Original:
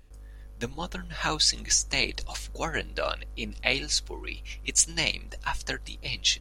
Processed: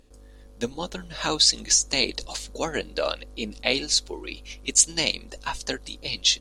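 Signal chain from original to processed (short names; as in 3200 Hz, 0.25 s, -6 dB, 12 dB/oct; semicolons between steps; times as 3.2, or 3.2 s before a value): ten-band EQ 250 Hz +9 dB, 500 Hz +9 dB, 1000 Hz +3 dB, 4000 Hz +8 dB, 8000 Hz +8 dB; gain -4.5 dB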